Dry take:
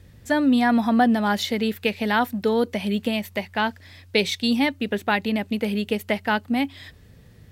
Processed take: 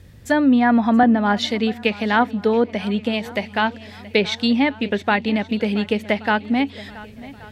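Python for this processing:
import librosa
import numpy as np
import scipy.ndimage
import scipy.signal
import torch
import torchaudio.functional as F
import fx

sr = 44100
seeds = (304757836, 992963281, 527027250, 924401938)

y = fx.env_lowpass_down(x, sr, base_hz=2300.0, full_db=-15.5)
y = fx.echo_swing(y, sr, ms=1127, ratio=1.5, feedback_pct=35, wet_db=-19.0)
y = fx.band_widen(y, sr, depth_pct=40, at=(1.03, 3.26))
y = y * librosa.db_to_amplitude(3.5)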